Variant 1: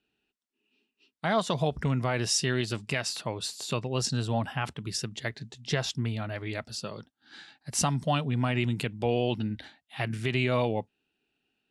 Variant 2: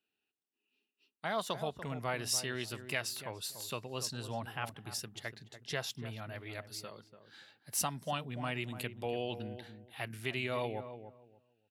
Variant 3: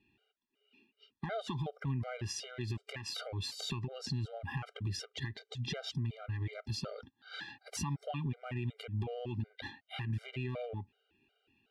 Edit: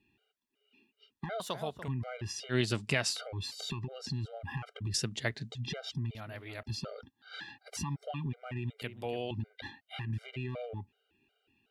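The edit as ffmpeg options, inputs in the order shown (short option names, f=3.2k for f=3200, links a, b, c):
-filter_complex "[1:a]asplit=3[a][b][c];[0:a]asplit=2[d][e];[2:a]asplit=6[f][g][h][i][j][k];[f]atrim=end=1.402[l];[a]atrim=start=1.398:end=1.882[m];[g]atrim=start=1.878:end=2.55[n];[d]atrim=start=2.49:end=3.19[o];[h]atrim=start=3.13:end=4.942[p];[e]atrim=start=4.938:end=5.522[q];[i]atrim=start=5.518:end=6.152[r];[b]atrim=start=6.148:end=6.632[s];[j]atrim=start=6.628:end=8.822[t];[c]atrim=start=8.818:end=9.312[u];[k]atrim=start=9.308[v];[l][m]acrossfade=d=0.004:c1=hsin:c2=hsin[w];[w][n]acrossfade=d=0.004:c1=hsin:c2=hsin[x];[x][o]acrossfade=d=0.06:c1=tri:c2=tri[y];[y][p]acrossfade=d=0.06:c1=tri:c2=tri[z];[z][q]acrossfade=d=0.004:c1=hsin:c2=hsin[aa];[aa][r]acrossfade=d=0.004:c1=hsin:c2=hsin[ab];[ab][s]acrossfade=d=0.004:c1=hsin:c2=hsin[ac];[ac][t]acrossfade=d=0.004:c1=hsin:c2=hsin[ad];[ad][u]acrossfade=d=0.004:c1=hsin:c2=hsin[ae];[ae][v]acrossfade=d=0.004:c1=hsin:c2=hsin"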